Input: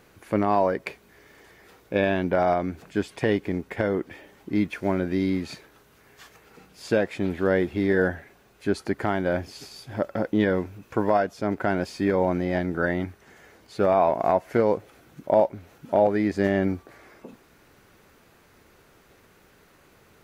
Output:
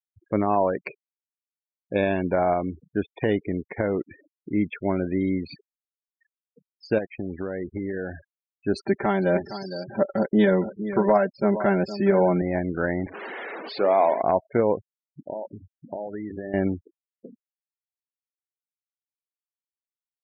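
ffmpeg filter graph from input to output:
-filter_complex "[0:a]asettb=1/sr,asplit=3[s0][s1][s2];[s0]atrim=end=6.984[s3];[s1]atrim=start=6.98:end=8.15,asetpts=PTS-STARTPTS,afade=t=in:d=0.004:c=qsin,afade=t=out:st=1.166:d=0.004:c=qsin,acompressor=threshold=0.0631:ratio=10:attack=3.2:release=140:knee=1:detection=peak,aeval=exprs='sgn(val(0))*max(abs(val(0))-0.00335,0)':c=same[s4];[s2]atrim=start=8.146[s5];[s3][s4]acrossfade=d=0.004:c1=hsin:c2=qsin[s6];[s6][s5]acrossfade=d=0.004:c1=qsin:c2=hsin,asettb=1/sr,asplit=3[s7][s8][s9];[s7]atrim=end=8.734[s10];[s8]atrim=start=8.73:end=12.42,asetpts=PTS-STARTPTS,afade=t=in:d=0.004:c=qsin,afade=t=out:st=3.686:d=0.004:c=qsin,aecho=1:1:5.1:1,atrim=end_sample=162729,aecho=1:1:462:0.266,atrim=end_sample=162729[s11];[s9]atrim=start=12.416[s12];[s10][s11]acrossfade=d=0.004:c1=hsin:c2=qsin[s13];[s13][s12]acrossfade=d=0.004:c1=qsin:c2=hsin,asettb=1/sr,asplit=3[s14][s15][s16];[s14]atrim=end=13.064[s17];[s15]atrim=start=13.06:end=14.22,asetpts=PTS-STARTPTS,afade=t=in:d=0.004:c=qsin,afade=t=out:st=1.156:d=0.004:c=qsin,aeval=exprs='val(0)+0.5*0.0473*sgn(val(0))':c=same,highpass=320,lowpass=4300,bandreject=f=60:t=h:w=6,bandreject=f=120:t=h:w=6,bandreject=f=180:t=h:w=6,bandreject=f=240:t=h:w=6,bandreject=f=300:t=h:w=6,bandreject=f=360:t=h:w=6,bandreject=f=420:t=h:w=6,bandreject=f=480:t=h:w=6[s18];[s16]atrim=start=14.216[s19];[s17][s18]acrossfade=d=0.004:c1=hsin:c2=qsin[s20];[s20][s19]acrossfade=d=0.004:c1=qsin:c2=hsin,asettb=1/sr,asplit=3[s21][s22][s23];[s21]atrim=end=15.214[s24];[s22]atrim=start=15.21:end=16.54,asetpts=PTS-STARTPTS,afade=t=in:d=0.004:c=qsin,afade=t=out:st=1.326:d=0.004:c=qsin,bandreject=f=50:t=h:w=6,bandreject=f=100:t=h:w=6,bandreject=f=150:t=h:w=6,bandreject=f=200:t=h:w=6,bandreject=f=250:t=h:w=6,bandreject=f=300:t=h:w=6,bandreject=f=350:t=h:w=6,bandreject=f=400:t=h:w=6,acompressor=threshold=0.0398:ratio=12:attack=3.2:release=140:knee=1:detection=peak[s25];[s23]atrim=start=16.536[s26];[s24][s25]acrossfade=d=0.004:c1=hsin:c2=qsin[s27];[s27][s26]acrossfade=d=0.004:c1=qsin:c2=hsin,afftfilt=real='re*gte(hypot(re,im),0.0251)':imag='im*gte(hypot(re,im),0.0251)':win_size=1024:overlap=0.75,equalizer=f=1600:t=o:w=0.77:g=-2.5"

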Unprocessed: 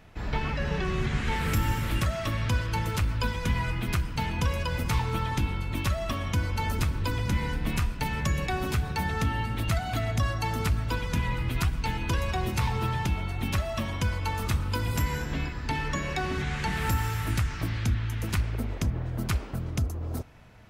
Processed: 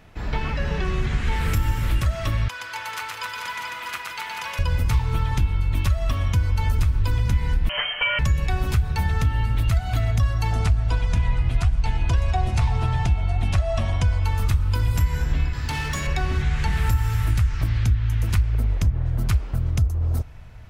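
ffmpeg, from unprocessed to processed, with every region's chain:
-filter_complex "[0:a]asettb=1/sr,asplit=3[s0][s1][s2];[s0]atrim=end=2.484[s3];[s1]atrim=start=2.48:end=4.59,asetpts=PTS-STARTPTS,afade=t=in:d=0.004:c=qsin,afade=t=out:st=2.106:d=0.004:c=qsin,highpass=980,equalizer=f=12000:t=o:w=2.6:g=-5.5,aecho=1:1:120|264|436.8|644.2|893:0.794|0.631|0.501|0.398|0.316,atrim=end_sample=93051[s4];[s2]atrim=start=4.586[s5];[s3][s4]acrossfade=d=0.004:c1=hsin:c2=qsin[s6];[s6][s5]acrossfade=d=0.004:c1=qsin:c2=hsin,asettb=1/sr,asplit=3[s7][s8][s9];[s7]atrim=end=7.694[s10];[s8]atrim=start=7.69:end=8.19,asetpts=PTS-STARTPTS,afade=t=in:d=0.004:c=qsin,afade=t=out:st=0.496:d=0.004:c=qsin,aecho=1:1:6.9:0.56,atrim=end_sample=22050,asplit=2[s11][s12];[s12]highpass=f=720:p=1,volume=7.94,asoftclip=type=tanh:threshold=0.2[s13];[s11][s13]amix=inputs=2:normalize=0,lowpass=f=2200:p=1,volume=0.501,lowpass=f=2700:t=q:w=0.5098,lowpass=f=2700:t=q:w=0.6013,lowpass=f=2700:t=q:w=0.9,lowpass=f=2700:t=q:w=2.563,afreqshift=-3200[s14];[s9]atrim=start=8.186[s15];[s10][s14]acrossfade=d=0.004:c1=hsin:c2=qsin[s16];[s16][s15]acrossfade=d=0.004:c1=qsin:c2=hsin,asettb=1/sr,asplit=3[s17][s18][s19];[s17]atrim=end=10.524[s20];[s18]atrim=start=10.52:end=14.23,asetpts=PTS-STARTPTS,afade=t=in:d=0.004:c=qsin,afade=t=out:st=3.706:d=0.004:c=qsin,lowpass=f=9700:w=0.5412,lowpass=f=9700:w=1.3066,equalizer=f=700:t=o:w=0.25:g=13[s21];[s19]atrim=start=14.226[s22];[s20][s21]acrossfade=d=0.004:c1=hsin:c2=qsin[s23];[s23][s22]acrossfade=d=0.004:c1=qsin:c2=hsin,asettb=1/sr,asplit=3[s24][s25][s26];[s24]atrim=end=15.534[s27];[s25]atrim=start=15.53:end=16.07,asetpts=PTS-STARTPTS,afade=t=in:d=0.004:c=qsin,afade=t=out:st=0.536:d=0.004:c=qsin,highpass=77,highshelf=f=2500:g=8.5,asoftclip=type=hard:threshold=0.0398[s28];[s26]atrim=start=16.066[s29];[s27][s28]acrossfade=d=0.004:c1=hsin:c2=qsin[s30];[s30][s29]acrossfade=d=0.004:c1=qsin:c2=hsin,asubboost=boost=5:cutoff=100,acompressor=threshold=0.0891:ratio=2.5,volume=1.41"

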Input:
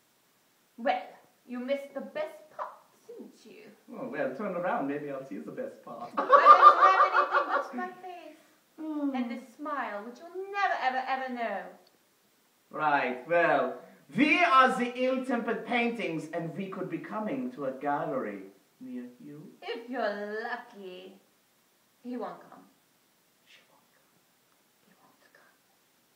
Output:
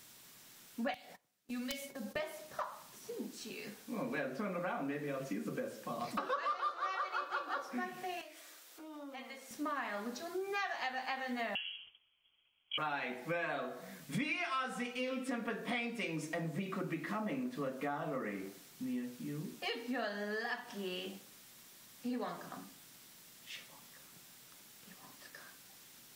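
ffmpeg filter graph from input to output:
-filter_complex "[0:a]asettb=1/sr,asplit=3[s0][s1][s2];[s0]atrim=end=0.944[s3];[s1]atrim=start=0.94:end=2.16,asetpts=PTS-STARTPTS,afade=t=in:d=0.004:c=qsin,afade=t=out:st=1.216:d=0.004:c=qsin,agate=range=0.0631:threshold=0.00251:ratio=16:release=100:detection=peak,acrossover=split=180|3000[s4][s5][s6];[s5]acompressor=threshold=0.00398:ratio=5:attack=3.2:release=140:knee=2.83:detection=peak[s7];[s4][s7][s6]amix=inputs=3:normalize=0,aeval=exprs='(mod(53.1*val(0)+1,2)-1)/53.1':c=same[s8];[s2]atrim=start=2.156[s9];[s3][s8]acrossfade=d=0.004:c1=hsin:c2=qsin[s10];[s10][s9]acrossfade=d=0.004:c1=qsin:c2=hsin,asettb=1/sr,asplit=3[s11][s12][s13];[s11]atrim=end=8.214[s14];[s12]atrim=start=8.21:end=9.51,asetpts=PTS-STARTPTS,afade=t=in:d=0.004:c=qsin,afade=t=out:st=1.296:d=0.004:c=qsin,highpass=f=370:w=0.5412,highpass=f=370:w=1.3066,acompressor=threshold=0.00112:ratio=2:attack=3.2:release=140:knee=1:detection=peak[s15];[s13]atrim=start=9.506[s16];[s14][s15]acrossfade=d=0.004:c1=hsin:c2=qsin[s17];[s17][s16]acrossfade=d=0.004:c1=qsin:c2=hsin,asettb=1/sr,asplit=3[s18][s19][s20];[s18]atrim=end=11.554[s21];[s19]atrim=start=11.55:end=12.78,asetpts=PTS-STARTPTS,afade=t=in:d=0.004:c=qsin,afade=t=out:st=1.226:d=0.004:c=qsin,agate=range=0.0224:threshold=0.00112:ratio=3:release=100:detection=peak,equalizer=f=1700:w=2.7:g=-12.5,lowpass=f=3000:t=q:w=0.5098,lowpass=f=3000:t=q:w=0.6013,lowpass=f=3000:t=q:w=0.9,lowpass=f=3000:t=q:w=2.563,afreqshift=-3500[s22];[s20]atrim=start=12.776[s23];[s21][s22]acrossfade=d=0.004:c1=hsin:c2=qsin[s24];[s24][s23]acrossfade=d=0.004:c1=qsin:c2=hsin,equalizer=f=560:w=0.31:g=-11,acompressor=threshold=0.00398:ratio=8,volume=4.22"

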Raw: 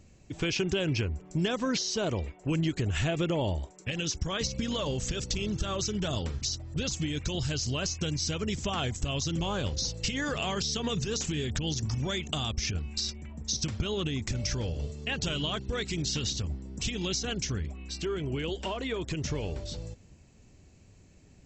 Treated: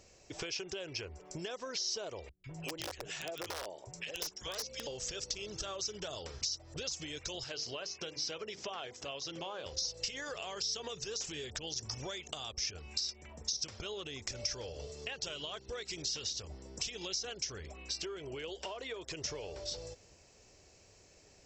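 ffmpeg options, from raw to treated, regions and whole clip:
-filter_complex "[0:a]asettb=1/sr,asplit=3[s0][s1][s2];[s0]atrim=end=2.294[s3];[s1]atrim=start=2.29:end=4.87,asetpts=PTS-STARTPTS,afade=t=in:d=0.004:c=qsin,afade=t=out:st=2.576:d=0.004:c=qsin,acrossover=split=170|1400[s4][s5][s6];[s6]adelay=150[s7];[s5]adelay=200[s8];[s4][s8][s7]amix=inputs=3:normalize=0,atrim=end_sample=113778,aeval=exprs='(mod(12.6*val(0)+1,2)-1)/12.6':c=same[s9];[s2]atrim=start=4.866[s10];[s3][s9]acrossfade=d=0.004:c1=hsin:c2=qsin[s11];[s11][s10]acrossfade=d=0.004:c1=qsin:c2=hsin,asettb=1/sr,asplit=3[s12][s13][s14];[s12]atrim=end=7.444[s15];[s13]atrim=start=7.44:end=9.66,asetpts=PTS-STARTPTS,afade=t=in:d=0.004:c=qsin,afade=t=out:st=2.216:d=0.004:c=qsin,highpass=170,lowpass=3900,bandreject=f=50:t=h:w=6,bandreject=f=100:t=h:w=6,bandreject=f=150:t=h:w=6,bandreject=f=200:t=h:w=6,bandreject=f=250:t=h:w=6,bandreject=f=300:t=h:w=6,bandreject=f=350:t=h:w=6,bandreject=f=400:t=h:w=6,bandreject=f=450:t=h:w=6,bandreject=f=500:t=h:w=6[s16];[s14]atrim=start=9.656[s17];[s15][s16]acrossfade=d=0.004:c1=hsin:c2=qsin[s18];[s18][s17]acrossfade=d=0.004:c1=qsin:c2=hsin,lowshelf=f=330:t=q:w=1.5:g=-11,acompressor=threshold=0.00891:ratio=6,equalizer=f=5300:w=2.8:g=9,volume=1.12"

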